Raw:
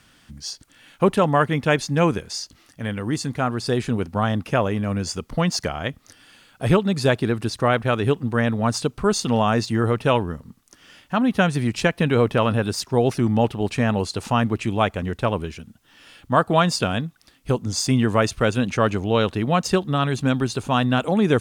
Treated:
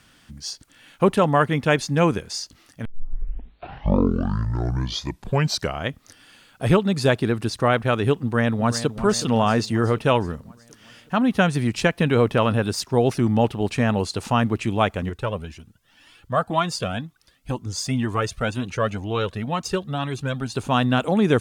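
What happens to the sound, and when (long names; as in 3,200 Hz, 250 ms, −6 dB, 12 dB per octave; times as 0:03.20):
0:02.85: tape start 3.02 s
0:08.15–0:08.88: delay throw 370 ms, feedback 60%, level −12 dB
0:15.09–0:20.56: flanger whose copies keep moving one way rising 2 Hz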